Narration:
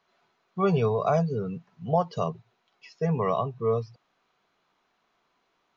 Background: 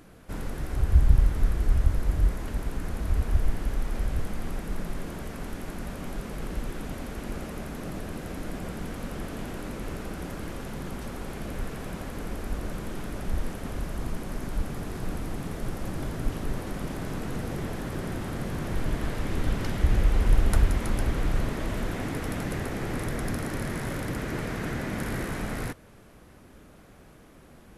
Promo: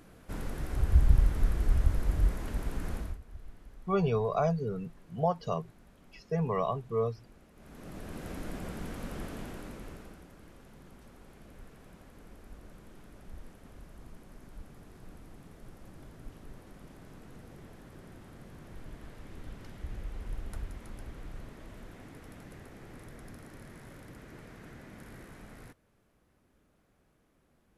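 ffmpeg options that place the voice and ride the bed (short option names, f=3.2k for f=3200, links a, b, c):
-filter_complex "[0:a]adelay=3300,volume=-4.5dB[a];[1:a]volume=15dB,afade=t=out:st=2.94:d=0.24:silence=0.105925,afade=t=in:st=7.55:d=0.73:silence=0.11885,afade=t=out:st=9.22:d=1.04:silence=0.211349[b];[a][b]amix=inputs=2:normalize=0"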